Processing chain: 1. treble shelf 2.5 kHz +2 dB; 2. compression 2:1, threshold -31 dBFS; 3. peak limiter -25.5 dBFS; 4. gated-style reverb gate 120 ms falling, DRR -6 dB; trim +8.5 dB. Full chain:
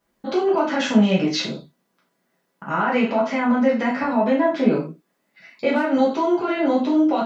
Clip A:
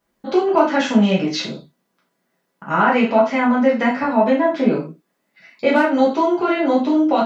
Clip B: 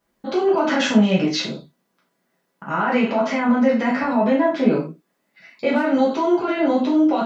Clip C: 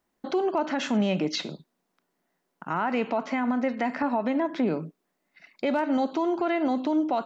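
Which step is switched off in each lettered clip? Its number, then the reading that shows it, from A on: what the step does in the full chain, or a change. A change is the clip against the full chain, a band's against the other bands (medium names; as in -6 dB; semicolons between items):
3, mean gain reduction 2.0 dB; 2, mean gain reduction 4.5 dB; 4, crest factor change -5.0 dB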